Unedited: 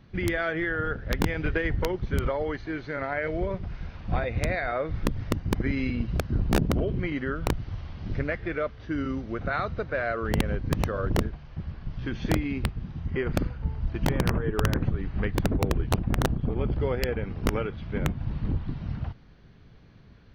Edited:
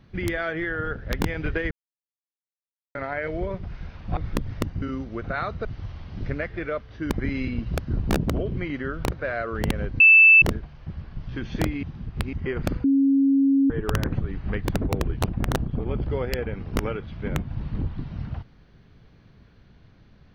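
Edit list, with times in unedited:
1.71–2.95 mute
4.17–4.87 cut
5.52–7.54 swap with 8.99–9.82
10.7–11.12 bleep 2640 Hz -9 dBFS
12.53–13.03 reverse
13.54–14.4 bleep 274 Hz -15.5 dBFS

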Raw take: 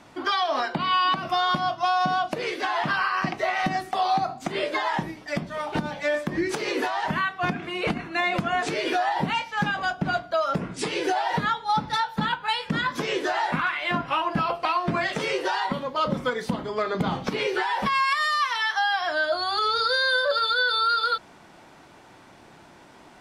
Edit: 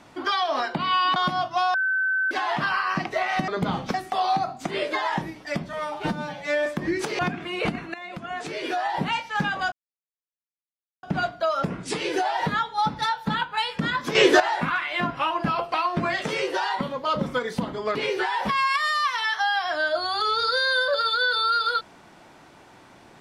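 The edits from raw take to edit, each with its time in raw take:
1.16–1.43 cut
2.01–2.58 bleep 1530 Hz -20.5 dBFS
5.54–6.16 stretch 1.5×
6.69–7.41 cut
8.16–9.35 fade in, from -17.5 dB
9.94 insert silence 1.31 s
13.06–13.31 gain +10.5 dB
16.86–17.32 move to 3.75

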